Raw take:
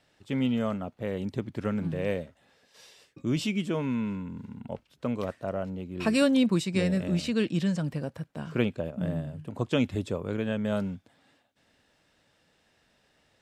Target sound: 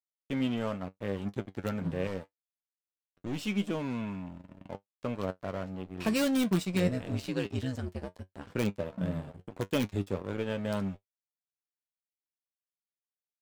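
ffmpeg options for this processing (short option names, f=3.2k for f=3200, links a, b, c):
-filter_complex "[0:a]aeval=exprs='sgn(val(0))*max(abs(val(0))-0.01,0)':c=same,asettb=1/sr,asplit=3[a][b][c];[a]atrim=end=6.874[d];[b]atrim=start=6.87:end=8.5,asetpts=PTS-STARTPTS,afade=t=in:d=0.004:c=qsin,afade=t=out:st=1.626:d=0.004:c=qsin,aeval=exprs='val(0)*sin(2*PI*65*n/s)':c=same[e];[c]atrim=start=8.496[f];[d][e]acrossfade=d=0.004:c1=hsin:c2=qsin[g];[g][f]acrossfade=d=0.004:c1=qsin:c2=hsin,asplit=2[h][i];[i]aeval=exprs='(mod(7.08*val(0)+1,2)-1)/7.08':c=same,volume=-8.5dB[j];[h][j]amix=inputs=2:normalize=0,asettb=1/sr,asplit=3[k][l][m];[k]atrim=end=2.074[n];[l]atrim=start=2.07:end=3.47,asetpts=PTS-STARTPTS,afade=t=in:d=0.004:c=qsin,afade=t=out:st=1.396:d=0.004:c=qsin,aeval=exprs='(tanh(17.8*val(0)+0.35)-tanh(0.35))/17.8':c=same[o];[m]atrim=start=3.466[p];[n][o]acrossfade=d=0.004:c1=hsin:c2=qsin[q];[q][p]acrossfade=d=0.004:c1=qsin:c2=hsin,flanger=delay=9.7:depth=1.7:regen=51:speed=0.81:shape=triangular"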